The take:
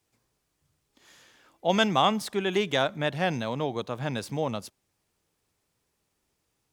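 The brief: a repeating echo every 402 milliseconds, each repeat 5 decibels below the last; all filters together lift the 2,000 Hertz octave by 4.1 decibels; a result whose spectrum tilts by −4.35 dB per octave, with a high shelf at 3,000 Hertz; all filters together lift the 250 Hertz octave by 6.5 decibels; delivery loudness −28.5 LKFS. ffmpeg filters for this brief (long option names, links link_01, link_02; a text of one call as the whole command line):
ffmpeg -i in.wav -af "equalizer=frequency=250:width_type=o:gain=8.5,equalizer=frequency=2000:width_type=o:gain=8.5,highshelf=frequency=3000:gain=-8.5,aecho=1:1:402|804|1206|1608|2010|2412|2814:0.562|0.315|0.176|0.0988|0.0553|0.031|0.0173,volume=-5dB" out.wav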